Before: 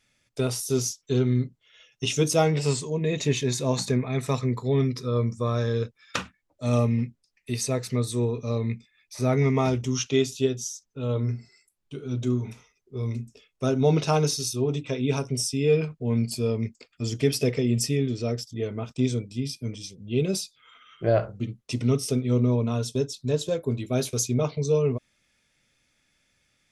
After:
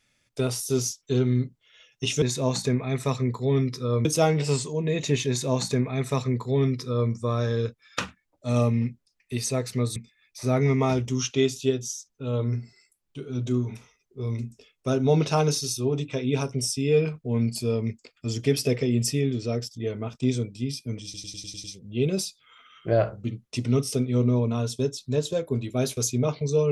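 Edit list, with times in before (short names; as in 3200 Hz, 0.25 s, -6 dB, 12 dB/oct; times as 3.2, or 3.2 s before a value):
3.45–5.28 copy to 2.22
8.13–8.72 cut
19.8 stutter 0.10 s, 7 plays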